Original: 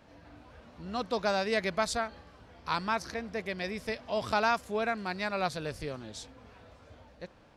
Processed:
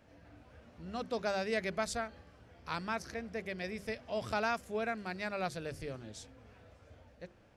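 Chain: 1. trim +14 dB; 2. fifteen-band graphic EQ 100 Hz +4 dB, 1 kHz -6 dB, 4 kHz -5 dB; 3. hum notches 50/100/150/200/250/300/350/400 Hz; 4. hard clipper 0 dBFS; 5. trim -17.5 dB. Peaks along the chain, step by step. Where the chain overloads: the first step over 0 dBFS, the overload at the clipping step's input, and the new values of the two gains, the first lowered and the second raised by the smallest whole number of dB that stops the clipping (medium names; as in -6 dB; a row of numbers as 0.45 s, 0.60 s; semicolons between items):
-0.5 dBFS, -3.5 dBFS, -3.5 dBFS, -3.5 dBFS, -21.0 dBFS; nothing clips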